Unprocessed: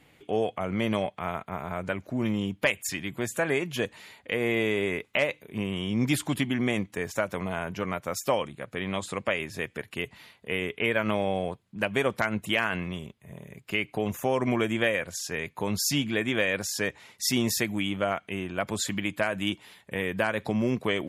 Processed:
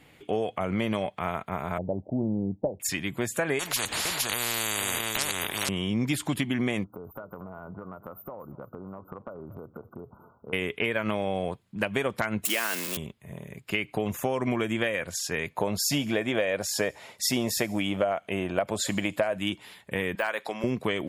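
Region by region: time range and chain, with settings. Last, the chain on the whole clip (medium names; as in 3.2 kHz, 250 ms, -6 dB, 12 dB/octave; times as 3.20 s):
1.78–2.80 s: steep low-pass 850 Hz 72 dB/octave + tape noise reduction on one side only decoder only
3.59–5.69 s: delay 462 ms -7.5 dB + spectrum-flattening compressor 10:1
6.84–10.53 s: brick-wall FIR band-stop 1.5–13 kHz + compression 10:1, threshold -39 dBFS + feedback delay 235 ms, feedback 40%, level -18 dB
12.45–12.97 s: zero-crossing glitches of -19 dBFS + high-pass 240 Hz 24 dB/octave
15.51–19.38 s: peaking EQ 620 Hz +10.5 dB 0.89 oct + feedback echo behind a high-pass 71 ms, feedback 53%, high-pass 4.7 kHz, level -18.5 dB
20.15–20.64 s: high-pass 580 Hz + de-esser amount 85%
whole clip: band-stop 6 kHz, Q 22; compression, threshold -26 dBFS; trim +3 dB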